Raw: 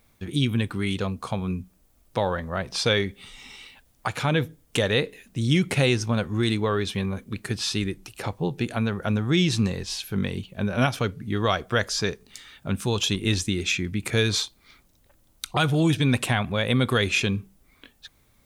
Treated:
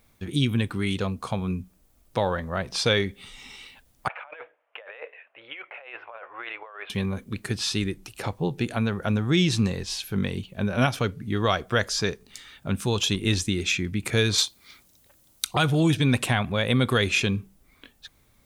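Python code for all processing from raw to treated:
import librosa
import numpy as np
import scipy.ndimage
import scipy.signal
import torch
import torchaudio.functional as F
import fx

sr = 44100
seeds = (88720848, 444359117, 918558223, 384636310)

y = fx.chain(x, sr, fx.ellip_bandpass(low_hz=600.0, high_hz=2700.0, order=3, stop_db=50),
    fx.air_absorb(metres=380.0),
    fx.over_compress(threshold_db=-41.0, ratio=-1.0), at=(4.08, 6.9))
y = fx.chain(y, sr, fx.highpass(hz=78.0, slope=6),
    fx.high_shelf(hz=2900.0, db=8.0), at=(14.38, 15.56))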